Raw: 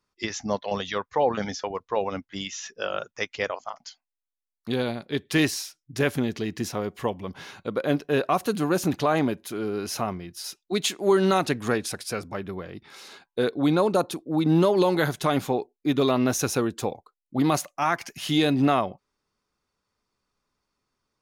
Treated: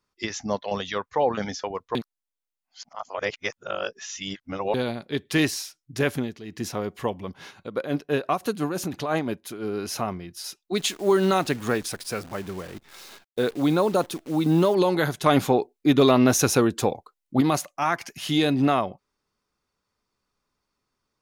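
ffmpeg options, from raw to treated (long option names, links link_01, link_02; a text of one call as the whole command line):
ffmpeg -i in.wav -filter_complex "[0:a]asplit=3[link_01][link_02][link_03];[link_01]afade=type=out:start_time=7.26:duration=0.02[link_04];[link_02]tremolo=f=5.9:d=0.6,afade=type=in:start_time=7.26:duration=0.02,afade=type=out:start_time=9.66:duration=0.02[link_05];[link_03]afade=type=in:start_time=9.66:duration=0.02[link_06];[link_04][link_05][link_06]amix=inputs=3:normalize=0,asettb=1/sr,asplit=3[link_07][link_08][link_09];[link_07]atrim=end=10.774[link_10];[link_08]atrim=start=10.77:end=14.75,asetpts=PTS-STARTPTS,afade=type=in:duration=0.004:curve=qsin,afade=type=out:start_time=3.976:duration=0.004:curve=qsin,acrusher=bits=8:dc=4:mix=0:aa=0.000001[link_11];[link_09]atrim=start=14.746[link_12];[link_10][link_11]acrossfade=duration=0.004:curve1=hsin:curve2=qsin[link_13];[link_13][link_12]acrossfade=duration=0.004:curve1=qsin:curve2=hsin,asettb=1/sr,asplit=3[link_14][link_15][link_16];[link_14]atrim=end=15.264[link_17];[link_15]atrim=start=15.26:end=17.41,asetpts=PTS-STARTPTS,afade=type=in:duration=0.004:curve=qsin,afade=type=out:start_time=2.146:duration=0.004:curve=qsin,acontrast=27[link_18];[link_16]atrim=start=17.406[link_19];[link_17][link_18]acrossfade=duration=0.004:curve1=hsin:curve2=qsin[link_20];[link_20][link_19]acrossfade=duration=0.004:curve1=qsin:curve2=hsin,asplit=5[link_21][link_22][link_23][link_24][link_25];[link_21]atrim=end=1.952[link_26];[link_22]atrim=start=1.948:end=4.742,asetpts=PTS-STARTPTS,areverse[link_27];[link_23]atrim=start=4.738:end=6.38,asetpts=PTS-STARTPTS,afade=type=out:start_time=1.402:duration=0.24:silence=0.266073[link_28];[link_24]atrim=start=6.38:end=6.43,asetpts=PTS-STARTPTS,volume=-11.5dB[link_29];[link_25]atrim=start=6.43,asetpts=PTS-STARTPTS,afade=type=in:duration=0.24:silence=0.266073[link_30];[link_26][link_27]acrossfade=duration=0.004:curve1=hsin:curve2=hsin[link_31];[link_28][link_29][link_30]concat=n=3:v=0:a=1[link_32];[link_31][link_32]acrossfade=duration=0.004:curve1=hsin:curve2=hsin" out.wav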